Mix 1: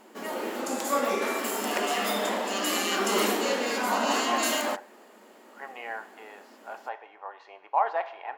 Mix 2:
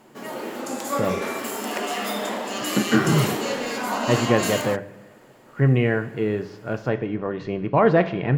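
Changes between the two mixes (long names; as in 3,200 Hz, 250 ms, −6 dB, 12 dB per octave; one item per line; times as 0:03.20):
speech: remove four-pole ladder high-pass 770 Hz, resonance 75%
master: add low shelf with overshoot 100 Hz −12 dB, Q 3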